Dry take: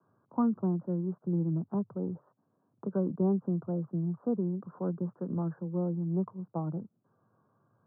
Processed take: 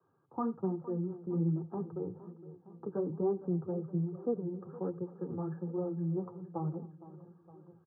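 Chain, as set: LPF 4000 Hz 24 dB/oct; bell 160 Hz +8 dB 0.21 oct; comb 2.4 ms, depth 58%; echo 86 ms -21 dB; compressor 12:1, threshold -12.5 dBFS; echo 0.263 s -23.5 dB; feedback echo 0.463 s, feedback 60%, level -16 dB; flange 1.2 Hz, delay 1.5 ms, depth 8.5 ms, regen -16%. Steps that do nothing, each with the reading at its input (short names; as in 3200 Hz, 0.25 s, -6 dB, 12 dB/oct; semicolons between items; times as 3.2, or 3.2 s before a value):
LPF 4000 Hz: input band ends at 810 Hz; compressor, threshold -12.5 dBFS: input peak -18.5 dBFS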